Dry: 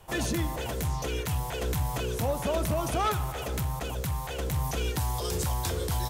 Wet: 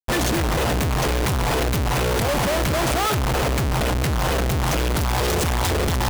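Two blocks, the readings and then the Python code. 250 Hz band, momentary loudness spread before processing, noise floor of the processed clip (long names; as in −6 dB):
+10.0 dB, 4 LU, −21 dBFS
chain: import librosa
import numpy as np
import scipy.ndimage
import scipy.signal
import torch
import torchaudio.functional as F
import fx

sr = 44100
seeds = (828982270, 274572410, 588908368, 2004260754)

y = fx.schmitt(x, sr, flips_db=-37.0)
y = y * 10.0 ** (9.0 / 20.0)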